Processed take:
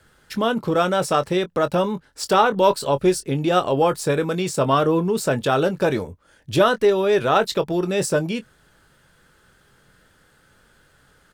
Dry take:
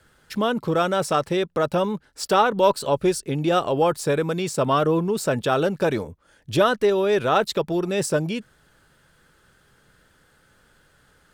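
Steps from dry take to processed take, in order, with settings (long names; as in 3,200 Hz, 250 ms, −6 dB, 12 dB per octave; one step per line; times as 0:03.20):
double-tracking delay 22 ms −11.5 dB
level +1.5 dB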